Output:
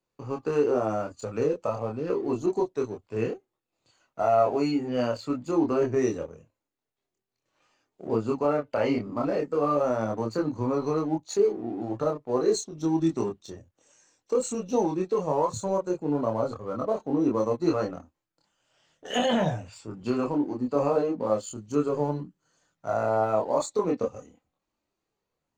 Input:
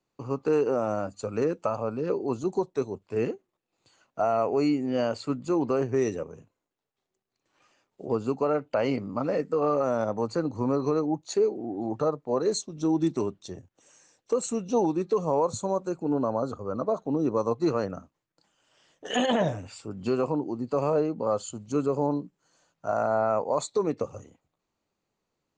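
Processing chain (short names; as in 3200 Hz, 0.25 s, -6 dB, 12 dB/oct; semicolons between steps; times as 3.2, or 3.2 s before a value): 1.4–1.99 dynamic EQ 1600 Hz, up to -7 dB, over -46 dBFS, Q 1.8; in parallel at -5.5 dB: crossover distortion -41 dBFS; on the sum: chorus voices 4, 0.15 Hz, delay 26 ms, depth 2 ms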